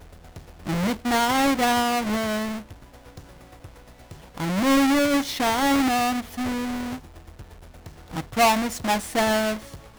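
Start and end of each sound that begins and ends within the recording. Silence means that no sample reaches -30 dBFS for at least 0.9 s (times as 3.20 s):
4.38–6.95 s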